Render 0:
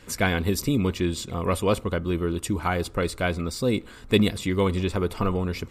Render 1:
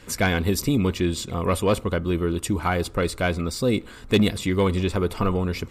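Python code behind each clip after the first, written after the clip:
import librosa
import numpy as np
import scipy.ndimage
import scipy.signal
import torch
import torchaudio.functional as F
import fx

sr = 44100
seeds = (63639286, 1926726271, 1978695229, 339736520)

y = fx.fold_sine(x, sr, drive_db=3, ceiling_db=-6.5)
y = F.gain(torch.from_numpy(y), -4.5).numpy()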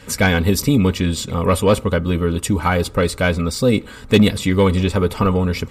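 y = fx.notch_comb(x, sr, f0_hz=350.0)
y = F.gain(torch.from_numpy(y), 7.0).numpy()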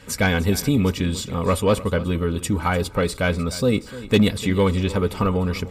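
y = x + 10.0 ** (-16.5 / 20.0) * np.pad(x, (int(299 * sr / 1000.0), 0))[:len(x)]
y = F.gain(torch.from_numpy(y), -4.0).numpy()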